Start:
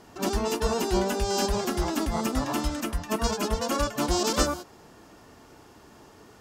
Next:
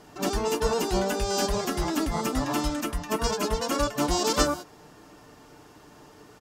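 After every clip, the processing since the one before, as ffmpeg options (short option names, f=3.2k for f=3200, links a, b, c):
-af "aecho=1:1:6.7:0.38"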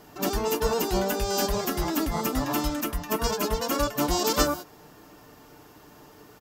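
-af "aexciter=amount=4.4:drive=3.9:freq=12k"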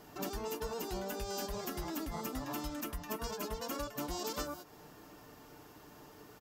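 -af "acompressor=threshold=-33dB:ratio=4,volume=-4.5dB"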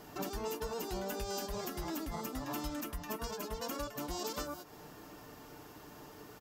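-af "alimiter=level_in=6.5dB:limit=-24dB:level=0:latency=1:release=349,volume=-6.5dB,volume=3dB"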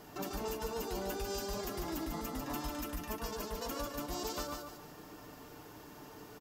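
-af "aecho=1:1:146|292|438|584:0.562|0.18|0.0576|0.0184,volume=-1dB"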